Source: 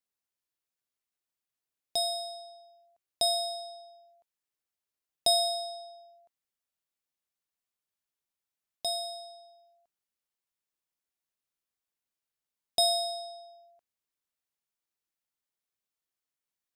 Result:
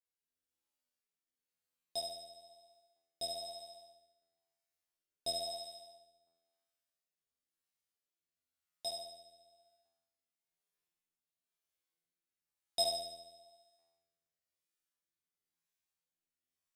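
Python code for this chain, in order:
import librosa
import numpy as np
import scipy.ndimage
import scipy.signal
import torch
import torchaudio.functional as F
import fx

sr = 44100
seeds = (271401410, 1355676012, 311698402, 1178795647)

y = fx.comb_fb(x, sr, f0_hz=84.0, decay_s=1.3, harmonics='all', damping=0.0, mix_pct=100)
y = fx.rotary(y, sr, hz=1.0)
y = y * librosa.db_to_amplitude(15.0)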